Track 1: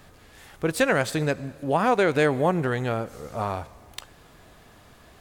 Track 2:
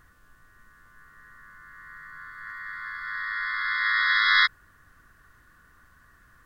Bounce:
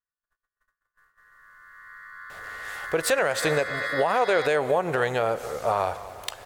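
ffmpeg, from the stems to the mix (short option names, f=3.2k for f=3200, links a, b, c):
-filter_complex "[0:a]adelay=2300,volume=-3.5dB,asplit=2[a][b];[b]volume=-21dB[c];[1:a]agate=range=-29dB:threshold=-51dB:ratio=16:detection=peak,acompressor=threshold=-27dB:ratio=6,volume=-10dB[d];[c]aecho=0:1:237|474|711|948|1185|1422|1659|1896:1|0.55|0.303|0.166|0.0915|0.0503|0.0277|0.0152[e];[a][d][e]amix=inputs=3:normalize=0,lowshelf=f=370:t=q:w=1.5:g=-9.5,dynaudnorm=f=440:g=7:m=13dB,alimiter=limit=-13dB:level=0:latency=1:release=154"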